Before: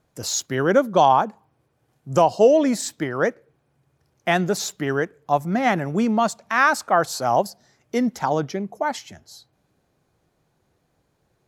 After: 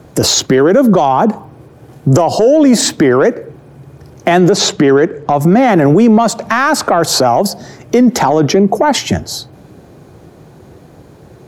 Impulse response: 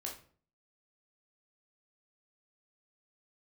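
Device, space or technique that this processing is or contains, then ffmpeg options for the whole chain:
mastering chain: -filter_complex "[0:a]asettb=1/sr,asplit=3[link_01][link_02][link_03];[link_01]atrim=end=4.504[link_04];[link_02]atrim=start=4.5:end=5.41,asetpts=PTS-STARTPTS,afade=type=in:duration=0.004:curve=qsin,afade=type=out:start_time=0.906:duration=0.004:curve=qsin,lowpass=6500[link_05];[link_03]atrim=start=5.406[link_06];[link_04][link_05]acrossfade=duration=0.004:curve1=hsin:curve2=qsin[link_07];[link_07][link_06]acrossfade=duration=0.004:curve1=qsin:curve2=hsin,highpass=60,equalizer=frequency=360:width_type=o:width=0.73:gain=3,acrossover=split=230|4900[link_08][link_09][link_10];[link_08]acompressor=threshold=-40dB:ratio=4[link_11];[link_09]acompressor=threshold=-18dB:ratio=4[link_12];[link_10]acompressor=threshold=-39dB:ratio=4[link_13];[link_11][link_12][link_13]amix=inputs=3:normalize=0,acompressor=threshold=-26dB:ratio=2,asoftclip=type=tanh:threshold=-16dB,tiltshelf=frequency=830:gain=4.5,alimiter=level_in=27dB:limit=-1dB:release=50:level=0:latency=1,volume=-1dB"

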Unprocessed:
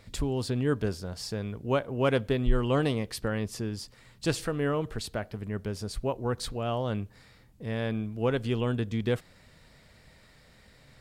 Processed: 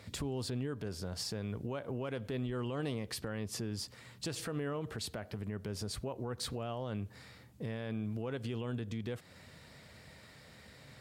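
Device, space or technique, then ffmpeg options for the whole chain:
podcast mastering chain: -af "highpass=frequency=69:width=0.5412,highpass=frequency=69:width=1.3066,deesser=0.7,acompressor=threshold=-34dB:ratio=2,alimiter=level_in=7dB:limit=-24dB:level=0:latency=1:release=92,volume=-7dB,volume=2.5dB" -ar 44100 -c:a libmp3lame -b:a 112k

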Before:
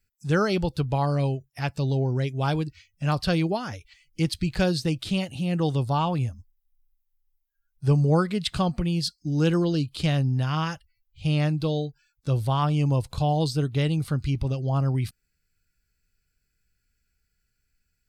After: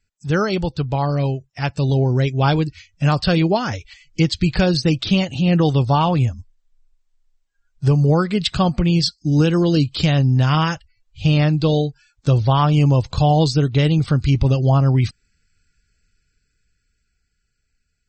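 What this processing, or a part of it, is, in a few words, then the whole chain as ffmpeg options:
low-bitrate web radio: -af "dynaudnorm=framelen=200:gausssize=21:maxgain=8dB,alimiter=limit=-9.5dB:level=0:latency=1:release=437,volume=4dB" -ar 48000 -c:a libmp3lame -b:a 32k

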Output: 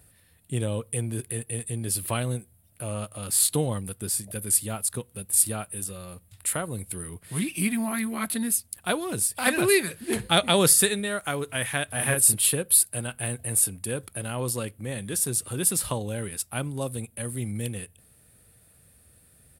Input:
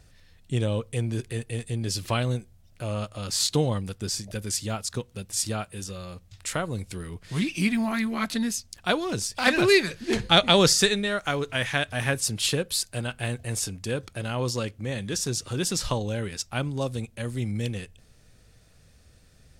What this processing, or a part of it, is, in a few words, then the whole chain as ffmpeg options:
budget condenser microphone: -filter_complex "[0:a]asplit=3[link_01][link_02][link_03];[link_01]afade=type=out:start_time=11.91:duration=0.02[link_04];[link_02]asplit=2[link_05][link_06];[link_06]adelay=38,volume=-2dB[link_07];[link_05][link_07]amix=inputs=2:normalize=0,afade=type=in:start_time=11.91:duration=0.02,afade=type=out:start_time=12.34:duration=0.02[link_08];[link_03]afade=type=in:start_time=12.34:duration=0.02[link_09];[link_04][link_08][link_09]amix=inputs=3:normalize=0,highpass=65,highshelf=frequency=7900:width_type=q:width=3:gain=11,volume=-2dB"

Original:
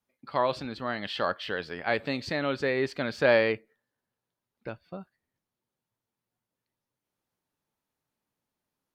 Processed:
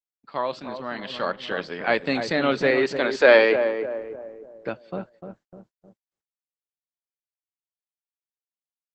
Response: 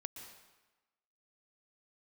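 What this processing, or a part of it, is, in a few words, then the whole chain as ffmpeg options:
video call: -filter_complex "[0:a]asplit=3[link_01][link_02][link_03];[link_01]afade=type=out:start_time=2.7:duration=0.02[link_04];[link_02]highpass=frequency=290:width=0.5412,highpass=frequency=290:width=1.3066,afade=type=in:start_time=2.7:duration=0.02,afade=type=out:start_time=3.53:duration=0.02[link_05];[link_03]afade=type=in:start_time=3.53:duration=0.02[link_06];[link_04][link_05][link_06]amix=inputs=3:normalize=0,highpass=frequency=150:width=0.5412,highpass=frequency=150:width=1.3066,asplit=2[link_07][link_08];[link_08]adelay=299,lowpass=frequency=930:poles=1,volume=-7dB,asplit=2[link_09][link_10];[link_10]adelay=299,lowpass=frequency=930:poles=1,volume=0.49,asplit=2[link_11][link_12];[link_12]adelay=299,lowpass=frequency=930:poles=1,volume=0.49,asplit=2[link_13][link_14];[link_14]adelay=299,lowpass=frequency=930:poles=1,volume=0.49,asplit=2[link_15][link_16];[link_16]adelay=299,lowpass=frequency=930:poles=1,volume=0.49,asplit=2[link_17][link_18];[link_18]adelay=299,lowpass=frequency=930:poles=1,volume=0.49[link_19];[link_07][link_09][link_11][link_13][link_15][link_17][link_19]amix=inputs=7:normalize=0,dynaudnorm=framelen=370:gausssize=9:maxgain=11dB,agate=range=-44dB:threshold=-49dB:ratio=16:detection=peak,volume=-1dB" -ar 48000 -c:a libopus -b:a 12k

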